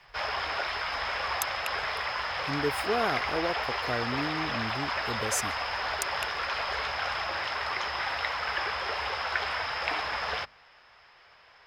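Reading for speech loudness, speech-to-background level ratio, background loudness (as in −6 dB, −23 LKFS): −34.5 LKFS, −4.0 dB, −30.5 LKFS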